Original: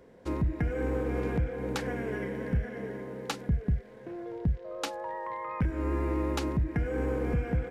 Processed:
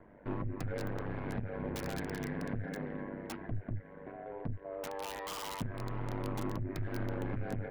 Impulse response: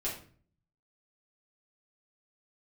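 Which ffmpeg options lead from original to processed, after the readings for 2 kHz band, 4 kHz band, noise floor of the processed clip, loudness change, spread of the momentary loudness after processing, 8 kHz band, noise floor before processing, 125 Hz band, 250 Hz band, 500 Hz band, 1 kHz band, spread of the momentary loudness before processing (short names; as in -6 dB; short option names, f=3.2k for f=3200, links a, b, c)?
-5.0 dB, -4.5 dB, -53 dBFS, -7.5 dB, 5 LU, -3.0 dB, -50 dBFS, -7.0 dB, -6.5 dB, -7.5 dB, -5.0 dB, 7 LU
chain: -filter_complex "[0:a]lowpass=f=2.1k:w=0.5412,lowpass=f=2.1k:w=1.3066,equalizer=f=420:t=o:w=0.75:g=-8,bandreject=f=1.2k:w=16,acompressor=threshold=-28dB:ratio=6,aresample=11025,asoftclip=type=tanh:threshold=-34.5dB,aresample=44100,flanger=delay=3:depth=2.9:regen=3:speed=0.29:shape=triangular,aeval=exprs='val(0)*sin(2*PI*49*n/s)':c=same,acrossover=split=700[a][b];[b]aeval=exprs='(mod(168*val(0)+1,2)-1)/168':c=same[c];[a][c]amix=inputs=2:normalize=0,volume=8dB"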